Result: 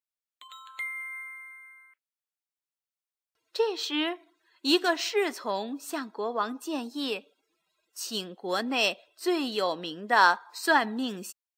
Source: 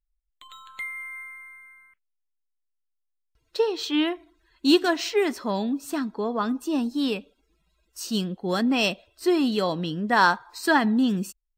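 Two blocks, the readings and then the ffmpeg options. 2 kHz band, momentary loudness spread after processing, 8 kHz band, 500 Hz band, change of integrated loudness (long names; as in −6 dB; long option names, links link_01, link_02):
−1.0 dB, 16 LU, −1.0 dB, −3.5 dB, −4.0 dB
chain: -af "highpass=420,volume=-1dB"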